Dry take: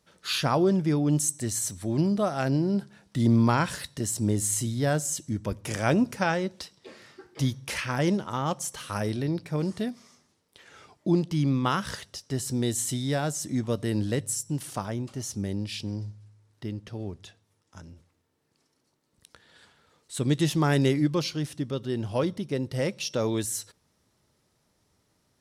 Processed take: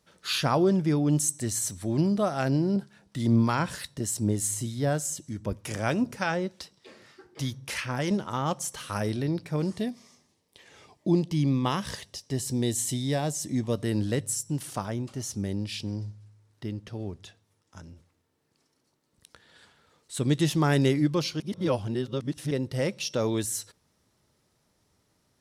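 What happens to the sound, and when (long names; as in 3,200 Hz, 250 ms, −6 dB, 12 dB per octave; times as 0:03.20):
0:02.76–0:08.11: two-band tremolo in antiphase 3.3 Hz, depth 50%, crossover 990 Hz
0:09.75–0:13.73: parametric band 1,400 Hz −14 dB 0.22 octaves
0:21.40–0:22.51: reverse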